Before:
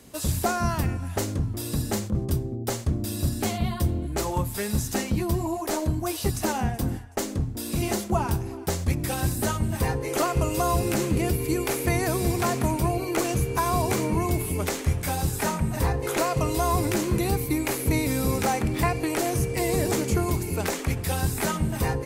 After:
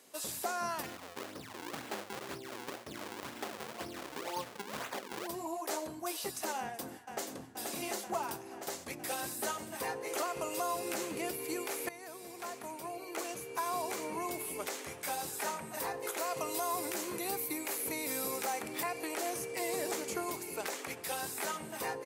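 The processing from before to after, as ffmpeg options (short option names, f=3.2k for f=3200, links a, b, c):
-filter_complex "[0:a]asplit=3[a][b][c];[a]afade=t=out:st=0.82:d=0.02[d];[b]acrusher=samples=41:mix=1:aa=0.000001:lfo=1:lforange=65.6:lforate=2,afade=t=in:st=0.82:d=0.02,afade=t=out:st=5.26:d=0.02[e];[c]afade=t=in:st=5.26:d=0.02[f];[d][e][f]amix=inputs=3:normalize=0,asplit=2[g][h];[h]afade=t=in:st=6.59:d=0.01,afade=t=out:st=7.34:d=0.01,aecho=0:1:480|960|1440|1920|2400|2880|3360|3840|4320|4800|5280|5760:0.473151|0.378521|0.302817|0.242253|0.193803|0.155042|0.124034|0.099227|0.0793816|0.0635053|0.0508042|0.0406434[i];[g][i]amix=inputs=2:normalize=0,asettb=1/sr,asplit=3[j][k][l];[j]atrim=end=15.744[m];[k]atrim=start=15.74:end=19.07,asetpts=PTS-STARTPTS,afade=t=in:d=0.004:c=qsin,afade=t=out:st=3.326:d=0.004:c=qsin,highshelf=f=9.6k:g=7.5[n];[l]atrim=start=19.066[o];[m][n]acrossfade=d=0.004:c1=hsin:c2=qsin[p];[p][o]acrossfade=d=0.004:c1=qsin:c2=hsin,asplit=2[q][r];[q]atrim=end=11.89,asetpts=PTS-STARTPTS,afade=t=out:st=11.886:d=0.004:c=hsin:silence=0.177828[s];[r]atrim=start=11.89,asetpts=PTS-STARTPTS,afade=t=in:d=2.61:silence=0.177828[t];[s][t]concat=n=2:v=0:a=1,highpass=450,alimiter=limit=-18dB:level=0:latency=1:release=169,volume=-6.5dB"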